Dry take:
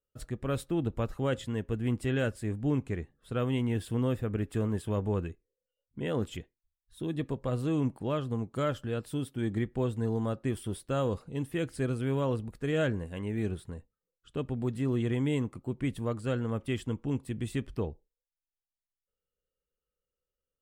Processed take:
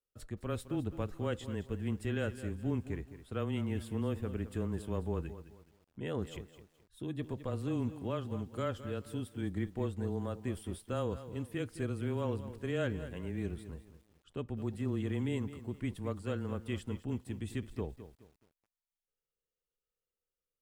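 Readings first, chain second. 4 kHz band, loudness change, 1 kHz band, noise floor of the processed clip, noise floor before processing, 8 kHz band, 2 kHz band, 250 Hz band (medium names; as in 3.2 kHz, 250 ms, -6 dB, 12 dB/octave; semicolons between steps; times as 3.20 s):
-5.5 dB, -5.5 dB, -5.5 dB, under -85 dBFS, under -85 dBFS, -5.0 dB, -5.5 dB, -5.5 dB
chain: frequency shift -15 Hz; bit-crushed delay 212 ms, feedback 35%, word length 9-bit, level -13 dB; trim -5.5 dB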